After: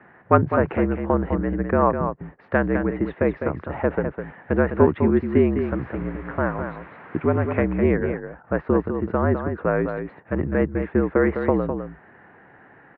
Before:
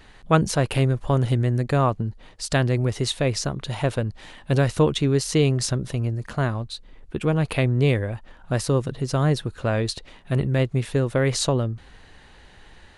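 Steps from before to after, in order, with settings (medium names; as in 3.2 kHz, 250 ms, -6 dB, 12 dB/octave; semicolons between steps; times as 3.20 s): 5.62–7.61 s: added noise white -37 dBFS; delay 205 ms -7.5 dB; mistuned SSB -55 Hz 180–2000 Hz; trim +3.5 dB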